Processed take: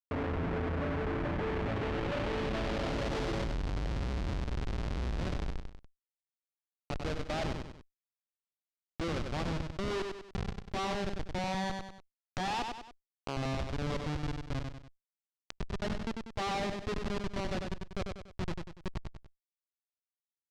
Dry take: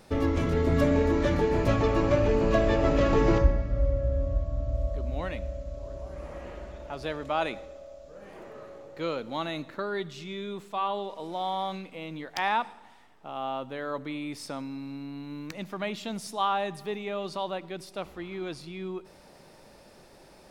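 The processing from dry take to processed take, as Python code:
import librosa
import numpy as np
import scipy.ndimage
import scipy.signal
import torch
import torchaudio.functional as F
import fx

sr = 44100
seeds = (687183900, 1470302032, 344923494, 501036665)

p1 = fx.tracing_dist(x, sr, depth_ms=0.43)
p2 = fx.env_lowpass_down(p1, sr, base_hz=1100.0, full_db=-19.5)
p3 = fx.low_shelf(p2, sr, hz=140.0, db=-4.0)
p4 = fx.schmitt(p3, sr, flips_db=-30.0)
p5 = fx.filter_sweep_lowpass(p4, sr, from_hz=2000.0, to_hz=4900.0, start_s=1.25, end_s=3.14, q=1.0)
p6 = p5 + fx.echo_feedback(p5, sr, ms=96, feedback_pct=19, wet_db=-9.0, dry=0)
p7 = fx.env_flatten(p6, sr, amount_pct=50)
y = p7 * 10.0 ** (-4.5 / 20.0)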